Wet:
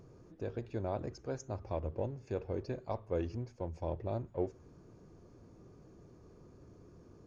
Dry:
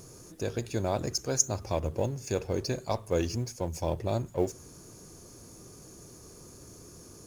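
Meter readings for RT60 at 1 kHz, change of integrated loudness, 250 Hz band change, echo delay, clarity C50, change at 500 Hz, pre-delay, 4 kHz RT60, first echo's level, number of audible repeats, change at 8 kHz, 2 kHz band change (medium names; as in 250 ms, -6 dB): no reverb, -8.0 dB, -7.0 dB, no echo, no reverb, -6.5 dB, no reverb, no reverb, no echo, no echo, under -25 dB, -11.0 dB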